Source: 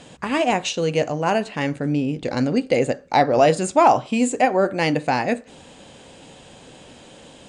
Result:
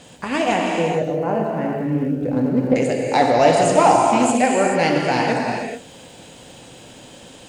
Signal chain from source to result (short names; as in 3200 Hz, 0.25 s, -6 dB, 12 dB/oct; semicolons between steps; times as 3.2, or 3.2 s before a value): 0.64–2.76 EQ curve 540 Hz 0 dB, 1900 Hz -10 dB, 4100 Hz -23 dB; crackle 150/s -45 dBFS; high shelf 4800 Hz +5 dB; non-linear reverb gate 0.46 s flat, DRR -1 dB; Doppler distortion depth 0.13 ms; gain -1.5 dB